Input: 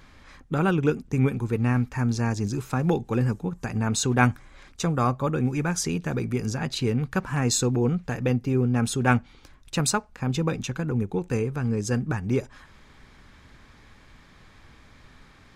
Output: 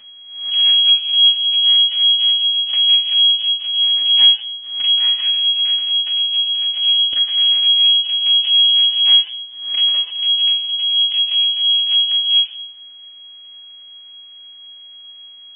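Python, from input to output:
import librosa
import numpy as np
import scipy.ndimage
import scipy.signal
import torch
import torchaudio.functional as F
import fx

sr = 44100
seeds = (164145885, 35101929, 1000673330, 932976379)

y = fx.wiener(x, sr, points=25)
y = fx.highpass(y, sr, hz=fx.line((4.99, 190.0), (7.36, 69.0)), slope=24, at=(4.99, 7.36), fade=0.02)
y = fx.quant_dither(y, sr, seeds[0], bits=8, dither='triangular')
y = np.abs(y)
y = fx.air_absorb(y, sr, metres=240.0)
y = fx.room_shoebox(y, sr, seeds[1], volume_m3=880.0, walls='furnished', distance_m=2.6)
y = fx.freq_invert(y, sr, carrier_hz=3300)
y = fx.pre_swell(y, sr, db_per_s=76.0)
y = F.gain(torch.from_numpy(y), -8.5).numpy()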